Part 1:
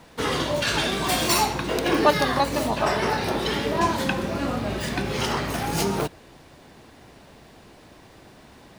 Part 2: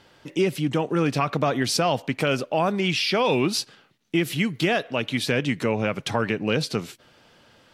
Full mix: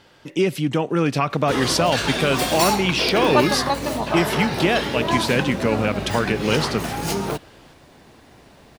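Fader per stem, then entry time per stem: 0.0, +2.5 decibels; 1.30, 0.00 seconds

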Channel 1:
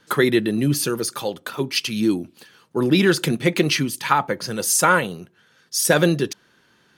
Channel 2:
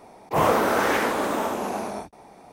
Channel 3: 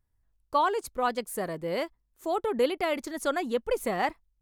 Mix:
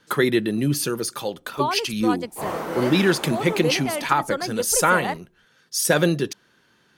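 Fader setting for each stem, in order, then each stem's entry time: −2.0, −9.5, 0.0 decibels; 0.00, 2.05, 1.05 seconds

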